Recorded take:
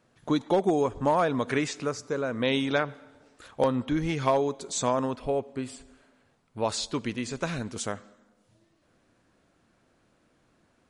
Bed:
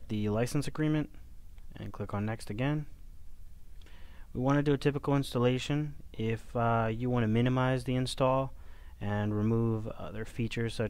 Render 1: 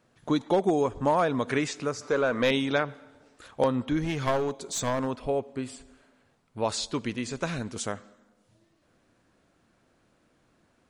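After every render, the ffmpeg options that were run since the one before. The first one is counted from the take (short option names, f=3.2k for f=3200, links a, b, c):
-filter_complex "[0:a]asettb=1/sr,asplit=3[a][b][c];[a]atrim=end=2.014[d];[b]atrim=start=2.01:end=2.51,asetpts=PTS-STARTPTS,afade=t=in:d=0.004:c=qsin,afade=t=out:st=0.496:d=0.004:c=qsin,asplit=2[e][f];[f]highpass=f=720:p=1,volume=16dB,asoftclip=type=tanh:threshold=-13dB[g];[e][g]amix=inputs=2:normalize=0,lowpass=f=3k:p=1,volume=-6dB[h];[c]atrim=start=2.506[i];[d][h]acrossfade=d=0.004:c1=hsin:c2=qsin[j];[j][i]acrossfade=d=0.004:c1=qsin:c2=hsin,asettb=1/sr,asplit=3[k][l][m];[k]atrim=end=4.034[n];[l]atrim=start=4.03:end=5.07,asetpts=PTS-STARTPTS,afade=t=in:d=0.004:c=qsin,afade=t=out:st=1.036:d=0.004:c=qsin,aeval=exprs='clip(val(0),-1,0.0447)':c=same[o];[m]atrim=start=5.066[p];[n][o]acrossfade=d=0.004:c1=hsin:c2=qsin[q];[q][p]acrossfade=d=0.004:c1=qsin:c2=hsin"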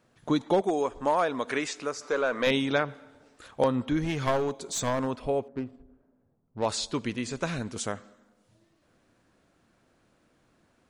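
-filter_complex "[0:a]asettb=1/sr,asplit=3[a][b][c];[a]atrim=end=0.614[d];[b]atrim=start=0.61:end=2.47,asetpts=PTS-STARTPTS,afade=t=in:d=0.004:c=qsin,afade=t=out:st=1.856:d=0.004:c=qsin,equalizer=f=110:w=0.69:g=-14.5[e];[c]atrim=start=2.466[f];[d][e]acrossfade=d=0.004:c1=hsin:c2=qsin[g];[g][f]acrossfade=d=0.004:c1=qsin:c2=hsin,asettb=1/sr,asplit=3[h][i][j];[h]atrim=end=5.484[k];[i]atrim=start=5.48:end=6.66,asetpts=PTS-STARTPTS,afade=t=in:d=0.004:c=qsin,afade=t=out:st=1.176:d=0.004:c=qsin,adynamicsmooth=sensitivity=3.5:basefreq=520[l];[j]atrim=start=6.656[m];[k][l]acrossfade=d=0.004:c1=hsin:c2=qsin[n];[n][m]acrossfade=d=0.004:c1=qsin:c2=hsin"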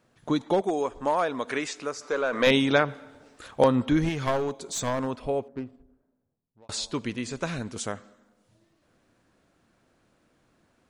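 -filter_complex "[0:a]asplit=4[a][b][c][d];[a]atrim=end=2.332[e];[b]atrim=start=2.328:end=4.092,asetpts=PTS-STARTPTS,volume=4.5dB[f];[c]atrim=start=4.088:end=6.69,asetpts=PTS-STARTPTS,afade=t=out:st=1.342:d=1.26[g];[d]atrim=start=6.69,asetpts=PTS-STARTPTS,afade=t=in:d=0.004:c=hsin[h];[e][f]acrossfade=d=0.004:c1=hsin:c2=hsin[i];[g][h]concat=n=2:v=0:a=1[j];[i][j]acrossfade=d=0.004:c1=hsin:c2=hsin"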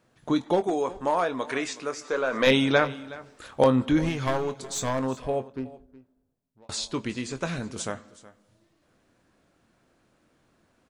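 -filter_complex "[0:a]asplit=2[a][b];[b]adelay=23,volume=-11dB[c];[a][c]amix=inputs=2:normalize=0,aecho=1:1:369:0.112"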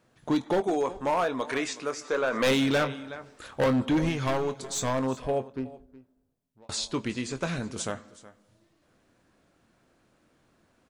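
-af "asoftclip=type=hard:threshold=-20dB"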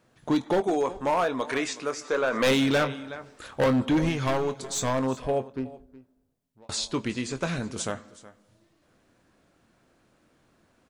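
-af "volume=1.5dB"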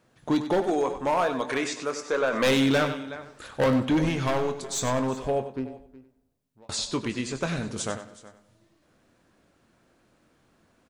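-af "aecho=1:1:96|192|288:0.282|0.0592|0.0124"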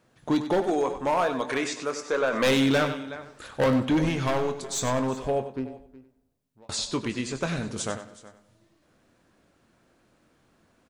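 -af anull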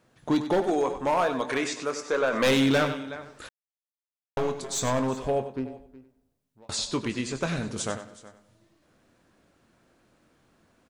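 -filter_complex "[0:a]asplit=3[a][b][c];[a]atrim=end=3.49,asetpts=PTS-STARTPTS,afade=t=out:st=3.486:d=0.004:c=hsin[d];[b]atrim=start=3.49:end=4.37,asetpts=PTS-STARTPTS,volume=0[e];[c]atrim=start=4.37,asetpts=PTS-STARTPTS,afade=t=in:d=0.004:c=hsin[f];[d][e][f]concat=n=3:v=0:a=1"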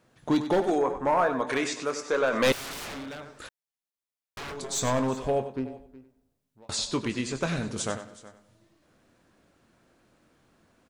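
-filter_complex "[0:a]asettb=1/sr,asplit=3[a][b][c];[a]atrim=end=0.784[d];[b]atrim=start=0.78:end=1.47,asetpts=PTS-STARTPTS,afade=t=in:d=0.004:c=qsin,afade=t=out:st=0.686:d=0.004:c=qsin,highshelf=f=2.3k:t=q:w=1.5:g=-7.5[e];[c]atrim=start=1.466[f];[d][e]acrossfade=d=0.004:c1=hsin:c2=qsin[g];[g][f]acrossfade=d=0.004:c1=qsin:c2=hsin,asettb=1/sr,asplit=3[h][i][j];[h]atrim=end=2.524[k];[i]atrim=start=2.52:end=4.57,asetpts=PTS-STARTPTS,afade=t=in:d=0.004:c=qsin,afade=t=out:st=2.046:d=0.004:c=qsin,aeval=exprs='0.0224*(abs(mod(val(0)/0.0224+3,4)-2)-1)':c=same[l];[j]atrim=start=4.566[m];[k][l]acrossfade=d=0.004:c1=hsin:c2=qsin[n];[n][m]acrossfade=d=0.004:c1=qsin:c2=hsin"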